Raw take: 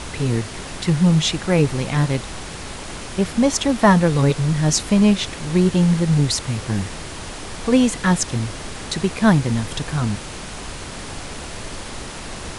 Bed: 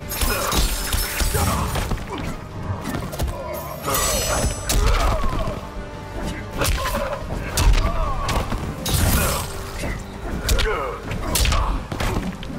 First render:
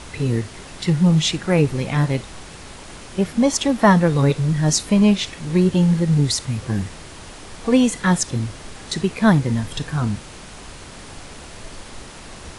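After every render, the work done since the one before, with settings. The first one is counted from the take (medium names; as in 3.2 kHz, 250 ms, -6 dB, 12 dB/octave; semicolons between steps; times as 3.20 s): noise print and reduce 6 dB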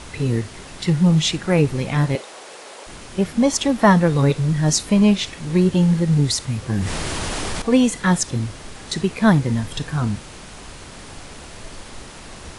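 2.15–2.87 s: resonant high-pass 500 Hz, resonance Q 1.9; 6.73–7.62 s: level flattener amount 70%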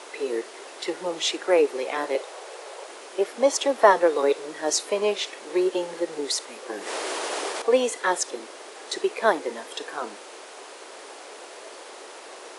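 steep high-pass 380 Hz 36 dB/octave; tilt shelf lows +4.5 dB, about 850 Hz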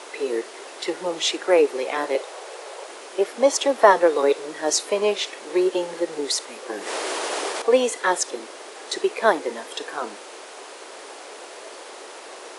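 trim +2.5 dB; peak limiter -1 dBFS, peak gain reduction 1 dB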